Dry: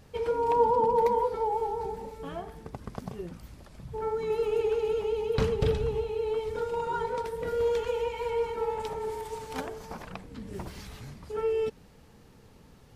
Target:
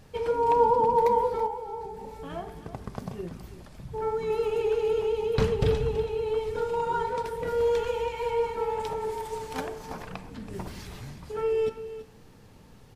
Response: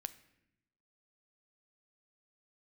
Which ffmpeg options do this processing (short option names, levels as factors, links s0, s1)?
-filter_complex "[0:a]asettb=1/sr,asplit=3[s0][s1][s2];[s0]atrim=end=1.464[s3];[s1]atrim=start=1.46:end=2.3,asetpts=PTS-STARTPTS,afade=t=in:d=0.004:c=qsin,afade=t=out:st=0.836:d=0.004:c=qsin,acompressor=threshold=0.0141:ratio=5[s4];[s2]atrim=start=2.296[s5];[s3][s4]acrossfade=d=0.004:c1=hsin:c2=qsin[s6];[s6][s5]acrossfade=d=0.004:c1=qsin:c2=hsin,aecho=1:1:329:0.211[s7];[1:a]atrim=start_sample=2205,asetrate=52920,aresample=44100[s8];[s7][s8]afir=irnorm=-1:irlink=0,volume=2.11"